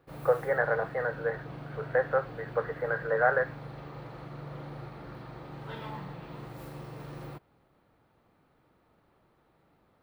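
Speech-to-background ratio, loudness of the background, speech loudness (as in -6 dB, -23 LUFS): 13.5 dB, -43.0 LUFS, -29.5 LUFS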